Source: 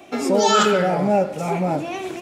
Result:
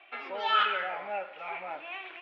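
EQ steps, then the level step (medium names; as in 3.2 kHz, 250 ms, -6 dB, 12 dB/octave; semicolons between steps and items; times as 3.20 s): high-pass 1.4 kHz 12 dB/octave; steep low-pass 3.1 kHz 36 dB/octave; -3.0 dB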